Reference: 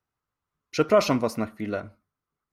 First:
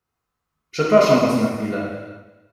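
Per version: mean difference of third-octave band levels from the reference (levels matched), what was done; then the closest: 7.5 dB: harmonic-percussive split harmonic +5 dB; delay 347 ms -18.5 dB; gated-style reverb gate 440 ms falling, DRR -4 dB; trim -1.5 dB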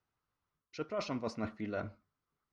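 5.5 dB: reverse; compression 12:1, threshold -33 dBFS, peak gain reduction 20 dB; reverse; low-pass 6 kHz 24 dB/octave; trim -1 dB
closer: second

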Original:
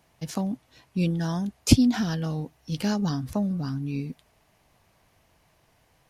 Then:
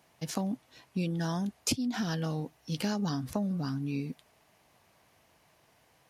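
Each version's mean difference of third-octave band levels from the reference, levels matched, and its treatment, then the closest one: 4.0 dB: high-pass 180 Hz 6 dB/octave; compression 16:1, threshold -27 dBFS, peak gain reduction 15.5 dB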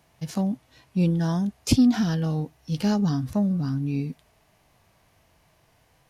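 2.0 dB: harmonic-percussive split percussive -7 dB; in parallel at -9 dB: saturation -24 dBFS, distortion -10 dB; on the sum: trim +1.5 dB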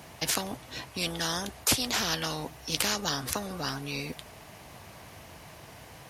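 14.0 dB: high-pass 61 Hz; spectrum-flattening compressor 4:1; trim -1.5 dB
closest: second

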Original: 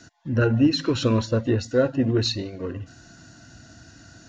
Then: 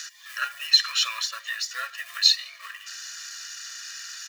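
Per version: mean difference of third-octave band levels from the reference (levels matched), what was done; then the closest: 21.0 dB: companding laws mixed up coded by mu; inverse Chebyshev high-pass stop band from 430 Hz, stop band 60 dB; comb 1.7 ms, depth 74%; tape noise reduction on one side only encoder only; trim +6 dB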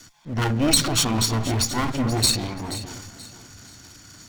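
10.0 dB: comb filter that takes the minimum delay 0.88 ms; transient shaper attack -2 dB, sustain +10 dB; treble shelf 3.3 kHz +10.5 dB; on a send: echo whose repeats swap between lows and highs 240 ms, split 1.9 kHz, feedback 58%, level -9.5 dB; on the sum: trim -2 dB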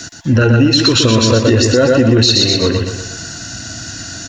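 7.5 dB: on a send: feedback delay 121 ms, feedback 46%, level -6 dB; on the sum: compression, threshold -21 dBFS, peak gain reduction 9 dB; treble shelf 2.4 kHz +11.5 dB; loudness maximiser +16 dB; trim -1 dB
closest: third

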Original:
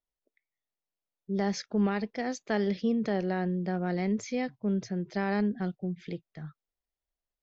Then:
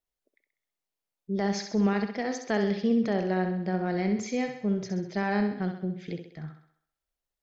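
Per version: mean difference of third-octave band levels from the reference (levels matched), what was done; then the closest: 3.5 dB: thinning echo 65 ms, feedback 53%, high-pass 180 Hz, level -7 dB; trim +1.5 dB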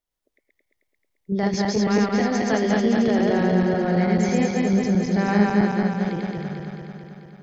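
9.0 dB: backward echo that repeats 110 ms, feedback 81%, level -0.5 dB; trim +5 dB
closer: first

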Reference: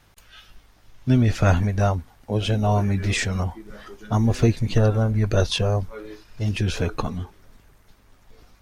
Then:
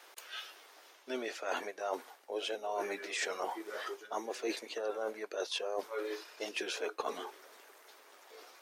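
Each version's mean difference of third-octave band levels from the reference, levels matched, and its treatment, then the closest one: 13.0 dB: steep high-pass 370 Hz 36 dB/octave; reverse; compression 12:1, threshold -37 dBFS, peak gain reduction 20.5 dB; reverse; trim +3.5 dB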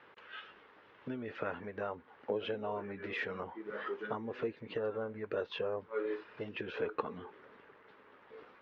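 8.0 dB: compression 6:1, threshold -33 dBFS, peak gain reduction 18.5 dB; cabinet simulation 400–2600 Hz, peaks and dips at 450 Hz +6 dB, 700 Hz -8 dB, 2.3 kHz -4 dB; trim +4 dB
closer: second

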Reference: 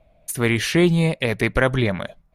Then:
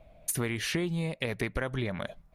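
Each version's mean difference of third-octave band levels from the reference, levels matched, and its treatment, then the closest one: 3.0 dB: compression 12:1, threshold -29 dBFS, peak gain reduction 18 dB; trim +1.5 dB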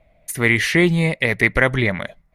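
1.5 dB: peaking EQ 2 kHz +11.5 dB 0.31 oct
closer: second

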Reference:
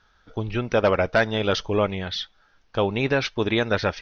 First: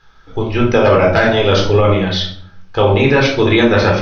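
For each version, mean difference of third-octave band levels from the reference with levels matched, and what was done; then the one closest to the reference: 5.5 dB: simulated room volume 840 m³, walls furnished, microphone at 4 m; loudness maximiser +6.5 dB; trim -1 dB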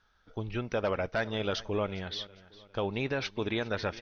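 2.0 dB: peak limiter -12.5 dBFS, peak gain reduction 3.5 dB; on a send: feedback delay 405 ms, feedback 42%, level -19.5 dB; on the sum: trim -8 dB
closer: second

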